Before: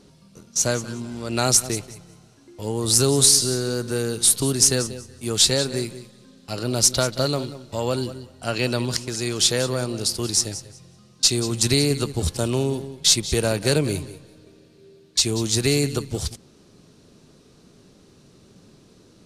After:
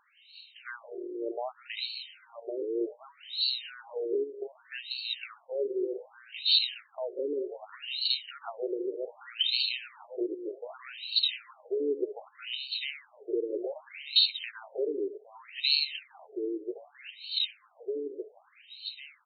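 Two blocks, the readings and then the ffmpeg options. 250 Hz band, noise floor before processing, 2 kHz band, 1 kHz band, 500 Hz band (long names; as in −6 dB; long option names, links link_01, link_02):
−13.0 dB, −54 dBFS, −7.5 dB, −13.5 dB, −8.0 dB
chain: -filter_complex "[0:a]equalizer=frequency=400:width_type=o:width=0.33:gain=8,equalizer=frequency=2500:width_type=o:width=0.33:gain=-6,equalizer=frequency=5000:width_type=o:width=0.33:gain=-4,asplit=2[link_01][link_02];[link_02]aecho=0:1:1112|2224|3336|4448:0.422|0.156|0.0577|0.0214[link_03];[link_01][link_03]amix=inputs=2:normalize=0,acompressor=threshold=-27dB:ratio=4,highshelf=frequency=2100:width_type=q:width=1.5:gain=13.5,aeval=exprs='val(0)+0.00794*(sin(2*PI*60*n/s)+sin(2*PI*2*60*n/s)/2+sin(2*PI*3*60*n/s)/3+sin(2*PI*4*60*n/s)/4+sin(2*PI*5*60*n/s)/5)':channel_layout=same,asuperstop=centerf=3400:order=12:qfactor=7.9,alimiter=level_in=7.5dB:limit=-1dB:release=50:level=0:latency=1,afftfilt=real='re*between(b*sr/1024,380*pow(3200/380,0.5+0.5*sin(2*PI*0.65*pts/sr))/1.41,380*pow(3200/380,0.5+0.5*sin(2*PI*0.65*pts/sr))*1.41)':imag='im*between(b*sr/1024,380*pow(3200/380,0.5+0.5*sin(2*PI*0.65*pts/sr))/1.41,380*pow(3200/380,0.5+0.5*sin(2*PI*0.65*pts/sr))*1.41)':win_size=1024:overlap=0.75,volume=-6dB"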